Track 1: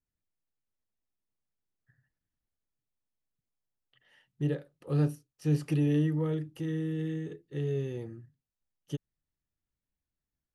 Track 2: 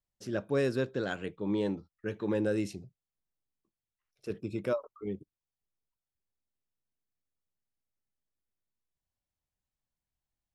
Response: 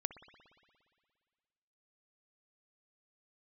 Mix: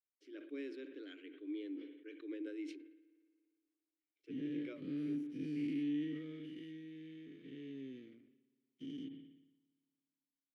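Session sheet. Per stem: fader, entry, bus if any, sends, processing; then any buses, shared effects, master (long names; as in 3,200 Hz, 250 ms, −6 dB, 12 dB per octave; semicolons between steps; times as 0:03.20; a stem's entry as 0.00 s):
−6.0 dB, 0.00 s, send −6.5 dB, every bin's largest magnitude spread in time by 240 ms; high-pass filter 190 Hz 6 dB per octave; dead-zone distortion −45 dBFS
−3.0 dB, 0.00 s, send −4 dB, Chebyshev high-pass with heavy ripple 290 Hz, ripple 3 dB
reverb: on, RT60 2.0 s, pre-delay 58 ms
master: formant filter i; level that may fall only so fast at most 64 dB per second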